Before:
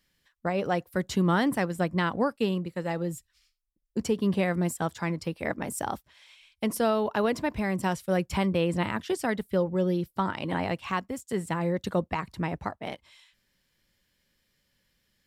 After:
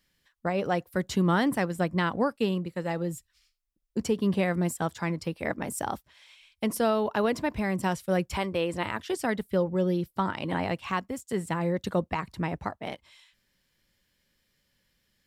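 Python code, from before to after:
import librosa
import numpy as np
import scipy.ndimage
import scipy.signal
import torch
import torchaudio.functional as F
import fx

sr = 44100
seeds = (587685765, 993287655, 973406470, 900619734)

y = fx.peak_eq(x, sr, hz=180.0, db=-8.5, octaves=1.2, at=(8.29, 9.14))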